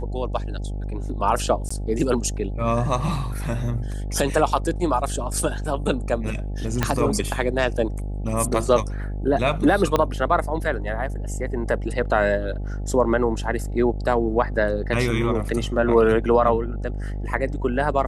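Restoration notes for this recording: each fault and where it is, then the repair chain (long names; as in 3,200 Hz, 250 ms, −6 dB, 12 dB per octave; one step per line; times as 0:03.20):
mains buzz 50 Hz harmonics 17 −28 dBFS
0:01.69–0:01.71: drop-out 15 ms
0:06.83: click −5 dBFS
0:09.96: click −7 dBFS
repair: click removal
hum removal 50 Hz, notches 17
repair the gap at 0:01.69, 15 ms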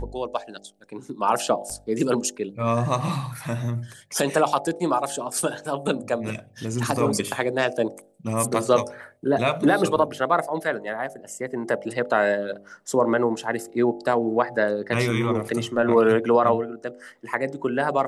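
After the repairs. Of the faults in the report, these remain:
0:06.83: click
0:09.96: click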